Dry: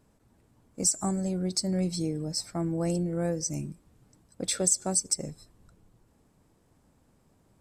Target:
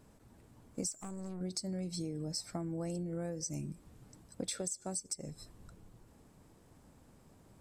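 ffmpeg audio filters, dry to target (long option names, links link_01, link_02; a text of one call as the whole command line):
ffmpeg -i in.wav -filter_complex "[0:a]acompressor=threshold=-39dB:ratio=12,asettb=1/sr,asplit=3[link_01][link_02][link_03];[link_01]atrim=end=0.924[link_04];[link_02]atrim=start=0.92:end=1.41,asetpts=PTS-STARTPTS,afade=type=in:duration=0.004:curve=qsin,afade=type=out:start_time=0.486:duration=0.004:curve=qsin,aeval=exprs='(tanh(141*val(0)+0.6)-tanh(0.6))/141':channel_layout=same[link_05];[link_03]atrim=start=1.406[link_06];[link_04][link_05]acrossfade=duration=0.004:curve1=hsin:curve2=qsin[link_07];[link_07][link_06]acrossfade=duration=0.004:curve1=qsin:curve2=hsin,volume=3.5dB" out.wav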